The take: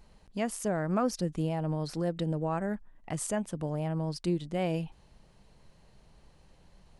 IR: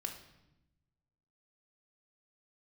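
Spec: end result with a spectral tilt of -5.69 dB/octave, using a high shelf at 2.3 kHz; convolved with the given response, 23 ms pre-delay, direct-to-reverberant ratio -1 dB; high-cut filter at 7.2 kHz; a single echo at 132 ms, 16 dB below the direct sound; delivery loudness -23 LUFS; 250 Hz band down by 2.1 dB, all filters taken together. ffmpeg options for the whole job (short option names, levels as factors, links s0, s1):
-filter_complex "[0:a]lowpass=7200,equalizer=f=250:t=o:g=-3.5,highshelf=f=2300:g=4,aecho=1:1:132:0.158,asplit=2[s0][s1];[1:a]atrim=start_sample=2205,adelay=23[s2];[s1][s2]afir=irnorm=-1:irlink=0,volume=1.19[s3];[s0][s3]amix=inputs=2:normalize=0,volume=2.24"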